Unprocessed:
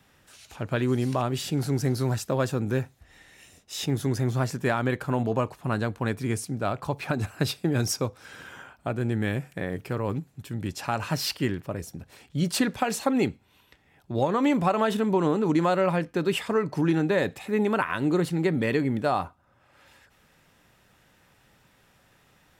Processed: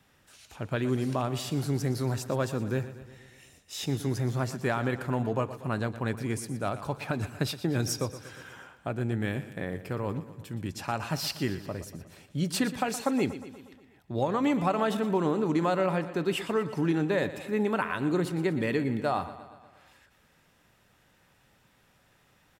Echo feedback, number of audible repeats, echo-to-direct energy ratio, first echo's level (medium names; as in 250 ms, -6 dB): 59%, 5, -12.0 dB, -14.0 dB